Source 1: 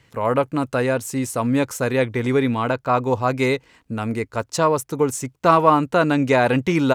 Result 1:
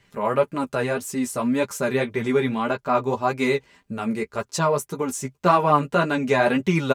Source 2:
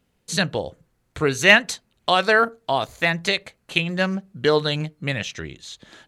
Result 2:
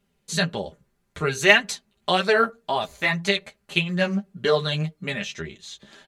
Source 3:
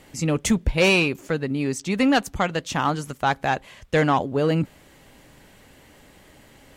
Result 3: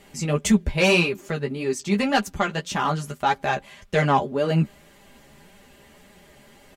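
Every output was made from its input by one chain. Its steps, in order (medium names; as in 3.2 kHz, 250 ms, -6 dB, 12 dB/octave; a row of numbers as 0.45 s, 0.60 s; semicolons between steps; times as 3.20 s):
flange 1.8 Hz, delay 9.4 ms, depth 5.7 ms, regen +12%; comb 5 ms, depth 57%; normalise loudness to -23 LUFS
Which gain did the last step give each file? 0.0 dB, 0.0 dB, +2.0 dB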